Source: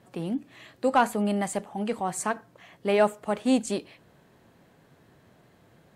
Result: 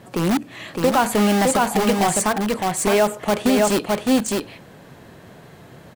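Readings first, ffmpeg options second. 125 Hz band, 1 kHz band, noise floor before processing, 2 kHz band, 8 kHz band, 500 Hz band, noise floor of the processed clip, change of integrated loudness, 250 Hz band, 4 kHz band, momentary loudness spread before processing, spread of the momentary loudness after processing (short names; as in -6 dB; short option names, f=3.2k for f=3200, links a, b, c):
+11.0 dB, +7.5 dB, -60 dBFS, +9.0 dB, +13.5 dB, +8.0 dB, -45 dBFS, +8.0 dB, +9.0 dB, +13.0 dB, 10 LU, 6 LU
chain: -filter_complex "[0:a]asplit=2[a][b];[b]aeval=exprs='(mod(18.8*val(0)+1,2)-1)/18.8':c=same,volume=-4.5dB[c];[a][c]amix=inputs=2:normalize=0,aecho=1:1:611:0.668,alimiter=limit=-16.5dB:level=0:latency=1:release=93,volume=9dB"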